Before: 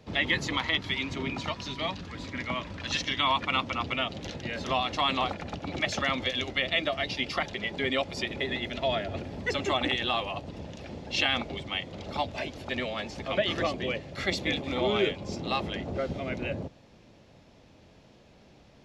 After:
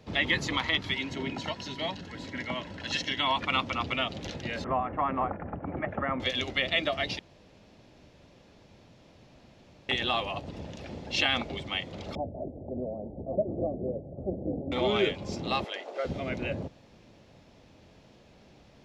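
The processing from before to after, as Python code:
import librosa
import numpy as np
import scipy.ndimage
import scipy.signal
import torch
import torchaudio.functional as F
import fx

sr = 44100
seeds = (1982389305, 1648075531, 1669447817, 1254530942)

y = fx.notch_comb(x, sr, f0_hz=1200.0, at=(0.94, 3.38))
y = fx.cheby2_lowpass(y, sr, hz=4200.0, order=4, stop_db=50, at=(4.64, 6.2))
y = fx.steep_lowpass(y, sr, hz=710.0, slope=48, at=(12.15, 14.72))
y = fx.highpass(y, sr, hz=450.0, slope=24, at=(15.64, 16.05))
y = fx.edit(y, sr, fx.room_tone_fill(start_s=7.19, length_s=2.7), tone=tone)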